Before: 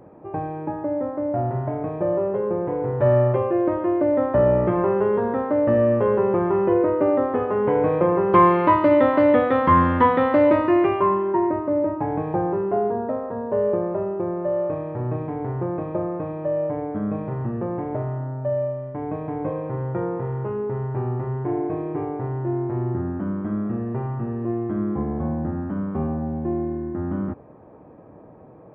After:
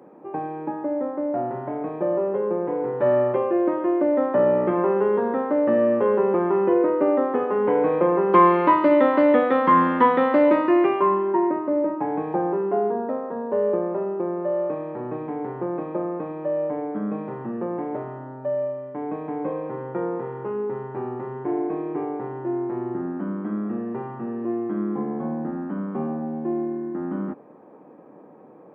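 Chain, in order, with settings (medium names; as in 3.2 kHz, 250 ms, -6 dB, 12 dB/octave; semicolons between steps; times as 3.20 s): high-pass 190 Hz 24 dB/octave; band-stop 640 Hz, Q 12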